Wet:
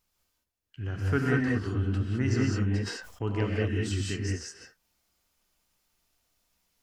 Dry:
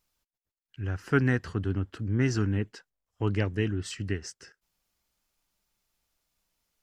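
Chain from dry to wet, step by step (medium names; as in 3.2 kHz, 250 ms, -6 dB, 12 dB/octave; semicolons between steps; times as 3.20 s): in parallel at +2 dB: compression, threshold -35 dBFS, peak gain reduction 16 dB; on the sum: gated-style reverb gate 230 ms rising, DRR -2.5 dB; 2.68–3.44 s: decay stretcher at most 67 dB/s; trim -7 dB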